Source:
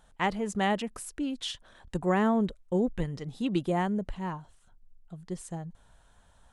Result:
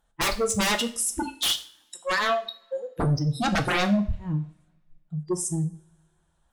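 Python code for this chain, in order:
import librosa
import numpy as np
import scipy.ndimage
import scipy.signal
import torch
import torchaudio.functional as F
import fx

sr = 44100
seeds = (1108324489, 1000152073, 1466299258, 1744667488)

y = fx.highpass(x, sr, hz=970.0, slope=12, at=(1.22, 3.0))
y = fx.noise_reduce_blind(y, sr, reduce_db=27)
y = fx.fold_sine(y, sr, drive_db=19, ceiling_db=-14.5)
y = fx.rev_double_slope(y, sr, seeds[0], early_s=0.42, late_s=1.8, knee_db=-27, drr_db=6.0)
y = F.gain(torch.from_numpy(y), -6.5).numpy()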